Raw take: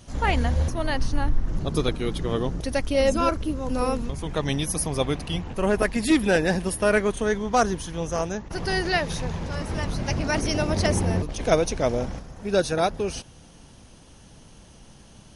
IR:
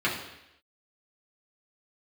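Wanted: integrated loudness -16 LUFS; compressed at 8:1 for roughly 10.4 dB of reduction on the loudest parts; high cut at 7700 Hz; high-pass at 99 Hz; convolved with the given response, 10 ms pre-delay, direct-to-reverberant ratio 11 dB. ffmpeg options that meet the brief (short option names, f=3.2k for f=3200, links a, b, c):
-filter_complex "[0:a]highpass=99,lowpass=7.7k,acompressor=threshold=-26dB:ratio=8,asplit=2[a][b];[1:a]atrim=start_sample=2205,adelay=10[c];[b][c]afir=irnorm=-1:irlink=0,volume=-23.5dB[d];[a][d]amix=inputs=2:normalize=0,volume=15dB"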